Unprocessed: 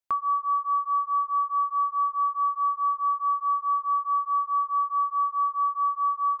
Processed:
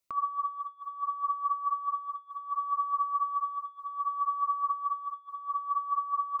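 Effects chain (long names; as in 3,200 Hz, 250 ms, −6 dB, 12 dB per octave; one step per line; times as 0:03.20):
0:02.54–0:04.70: high-pass filter 930 Hz 12 dB per octave
compressor whose output falls as the input rises −30 dBFS, ratio −0.5
phaser whose notches keep moving one way rising 0.67 Hz
level +2.5 dB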